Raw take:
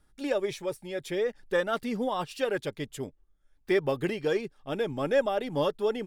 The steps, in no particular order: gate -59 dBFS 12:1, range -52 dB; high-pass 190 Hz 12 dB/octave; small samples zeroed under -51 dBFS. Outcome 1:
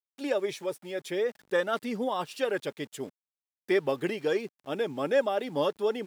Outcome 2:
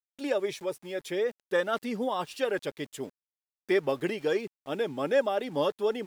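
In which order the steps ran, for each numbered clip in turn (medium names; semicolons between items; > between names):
gate > small samples zeroed > high-pass; high-pass > gate > small samples zeroed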